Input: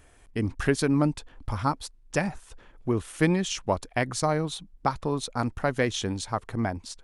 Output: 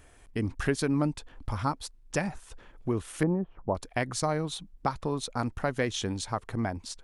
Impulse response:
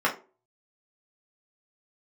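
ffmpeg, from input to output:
-filter_complex "[0:a]asettb=1/sr,asplit=3[a][b][c];[a]atrim=end=3.234[d];[b]atrim=start=3.23:end=3.75,asetpts=PTS-STARTPTS,afade=t=in:d=0.004:c=qsin,afade=t=out:st=0.516:d=0.004:c=qsin,lowpass=f=1k:w=0.5412,lowpass=f=1k:w=1.3066[e];[c]atrim=start=3.746[f];[d][e]acrossfade=d=0.004:c1=hsin:c2=qsin[g];[g][f]acrossfade=d=0.004:c1=qsin:c2=hsin,asplit=2[h][i];[i]acompressor=threshold=-31dB:ratio=6,volume=0.5dB[j];[h][j]amix=inputs=2:normalize=0,volume=-6dB"

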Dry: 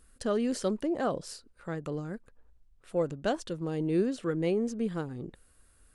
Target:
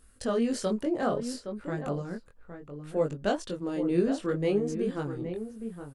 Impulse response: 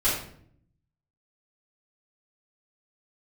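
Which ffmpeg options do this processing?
-filter_complex "[0:a]asplit=2[a][b];[b]adelay=816.3,volume=-9dB,highshelf=f=4k:g=-18.4[c];[a][c]amix=inputs=2:normalize=0,flanger=delay=19.5:depth=3.3:speed=0.64,volume=4.5dB"

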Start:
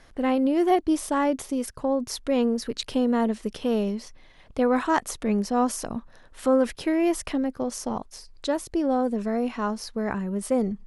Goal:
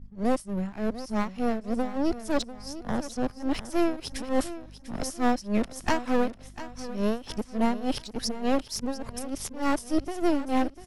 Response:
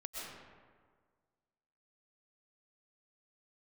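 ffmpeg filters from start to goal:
-filter_complex "[0:a]areverse,agate=range=-33dB:threshold=-40dB:ratio=3:detection=peak,equalizer=f=5.3k:t=o:w=0.24:g=5.5,acrossover=split=200|3500[a][b][c];[b]aeval=exprs='max(val(0),0)':c=same[d];[a][d][c]amix=inputs=3:normalize=0,aeval=exprs='val(0)+0.00355*(sin(2*PI*50*n/s)+sin(2*PI*2*50*n/s)/2+sin(2*PI*3*50*n/s)/3+sin(2*PI*4*50*n/s)/4+sin(2*PI*5*50*n/s)/5)':c=same,asplit=2[e][f];[f]asoftclip=type=tanh:threshold=-22dB,volume=-3.5dB[g];[e][g]amix=inputs=2:normalize=0,tremolo=f=3.4:d=0.89,aecho=1:1:696|1392|2088|2784:0.2|0.0758|0.0288|0.0109"

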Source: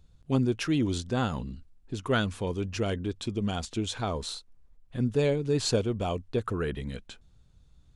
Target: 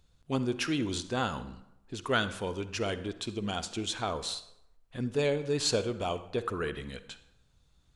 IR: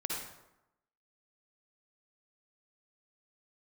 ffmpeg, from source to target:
-filter_complex "[0:a]lowshelf=f=370:g=-10,asplit=2[a][b];[1:a]atrim=start_sample=2205,asetrate=48510,aresample=44100,highshelf=f=8.5k:g=-6.5[c];[b][c]afir=irnorm=-1:irlink=0,volume=-11.5dB[d];[a][d]amix=inputs=2:normalize=0"

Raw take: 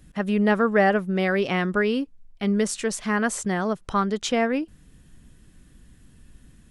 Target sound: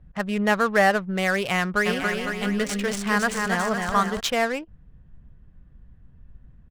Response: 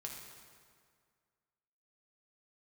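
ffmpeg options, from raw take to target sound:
-filter_complex "[0:a]equalizer=f=300:t=o:w=1.2:g=-12.5,adynamicsmooth=sensitivity=8:basefreq=890,asplit=3[a][b][c];[a]afade=t=out:st=1.85:d=0.02[d];[b]aecho=1:1:280|504|683.2|826.6|941.2:0.631|0.398|0.251|0.158|0.1,afade=t=in:st=1.85:d=0.02,afade=t=out:st=4.19:d=0.02[e];[c]afade=t=in:st=4.19:d=0.02[f];[d][e][f]amix=inputs=3:normalize=0,volume=3.5dB"

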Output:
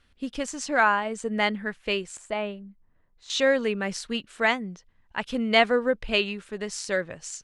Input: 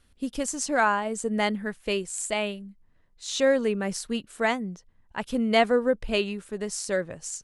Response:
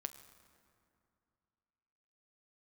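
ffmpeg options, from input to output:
-af "crystalizer=i=7.5:c=0,asetnsamples=n=441:p=0,asendcmd='2.17 lowpass f 1200;3.3 lowpass f 2700',lowpass=2.3k,volume=-2dB"

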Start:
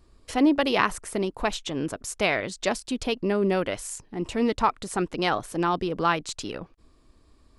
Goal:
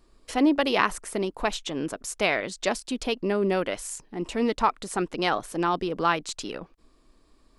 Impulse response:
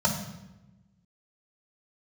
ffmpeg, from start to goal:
-af "equalizer=f=84:w=1.4:g=-14"

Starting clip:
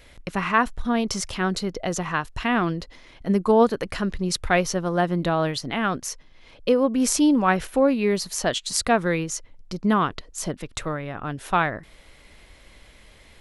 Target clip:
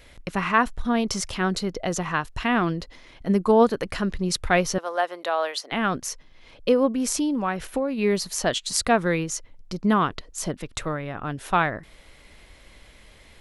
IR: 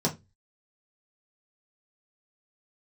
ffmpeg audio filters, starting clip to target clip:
-filter_complex "[0:a]asettb=1/sr,asplit=3[a][b][c];[a]atrim=end=4.784[d];[b]atrim=start=4.78:end=5.72,asetpts=PTS-STARTPTS,afade=t=in:d=0.004:c=qsin,afade=t=out:st=0.936:d=0.004:c=qsin,highpass=f=500:w=0.5412,highpass=f=500:w=1.3066[e];[c]atrim=start=5.716[f];[d][e]acrossfade=d=0.004:c1=hsin:c2=qsin[g];[g][f]acrossfade=d=0.004:c1=qsin:c2=hsin,asplit=3[h][i][j];[h]afade=t=out:st=6.91:d=0.02[k];[i]acompressor=threshold=-22dB:ratio=6,afade=t=in:st=6.91:d=0.02,afade=t=out:st=7.97:d=0.02[l];[j]afade=t=in:st=7.97:d=0.02[m];[k][l][m]amix=inputs=3:normalize=0"

